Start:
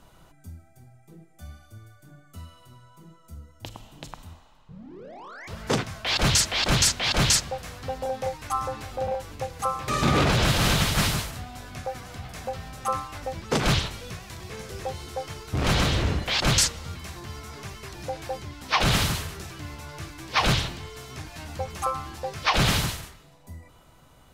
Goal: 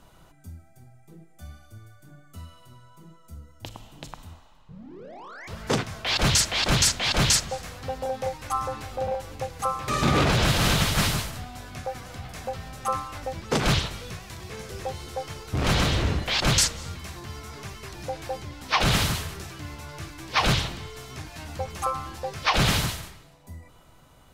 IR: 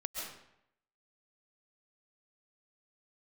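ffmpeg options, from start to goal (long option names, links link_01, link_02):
-filter_complex "[0:a]asplit=2[link_01][link_02];[1:a]atrim=start_sample=2205,adelay=62[link_03];[link_02][link_03]afir=irnorm=-1:irlink=0,volume=-21.5dB[link_04];[link_01][link_04]amix=inputs=2:normalize=0"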